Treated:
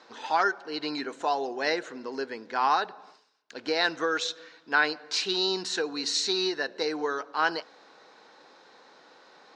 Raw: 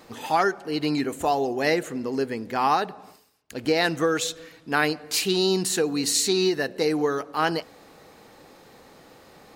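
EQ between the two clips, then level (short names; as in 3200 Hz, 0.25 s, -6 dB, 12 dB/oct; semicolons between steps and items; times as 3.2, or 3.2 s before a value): speaker cabinet 330–6200 Hz, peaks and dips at 990 Hz +6 dB, 1500 Hz +8 dB, 3900 Hz +6 dB, 5600 Hz +4 dB; notch 1200 Hz, Q 28; -5.5 dB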